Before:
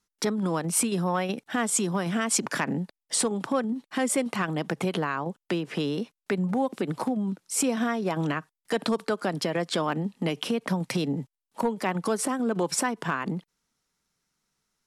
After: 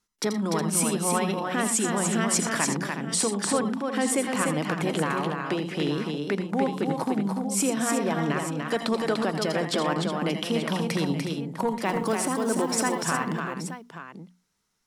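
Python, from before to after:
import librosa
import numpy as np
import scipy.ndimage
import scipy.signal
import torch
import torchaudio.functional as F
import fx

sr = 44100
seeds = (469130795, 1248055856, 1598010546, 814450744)

y = fx.hum_notches(x, sr, base_hz=60, count=4)
y = fx.quant_float(y, sr, bits=4, at=(11.85, 13.05))
y = fx.echo_multitap(y, sr, ms=(83, 84, 119, 294, 364, 878), db=(-11.0, -11.5, -18.0, -4.5, -10.5, -12.0))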